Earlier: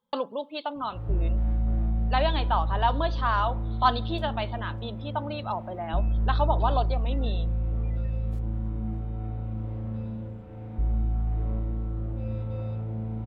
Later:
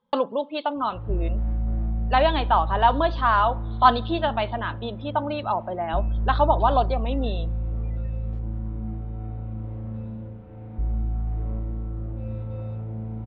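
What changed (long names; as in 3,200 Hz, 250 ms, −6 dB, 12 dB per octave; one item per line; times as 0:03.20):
speech +7.0 dB
master: add high-frequency loss of the air 190 metres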